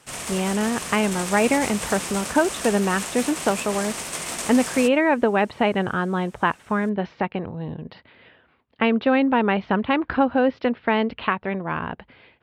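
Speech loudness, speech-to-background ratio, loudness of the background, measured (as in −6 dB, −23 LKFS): −22.5 LKFS, 7.0 dB, −29.5 LKFS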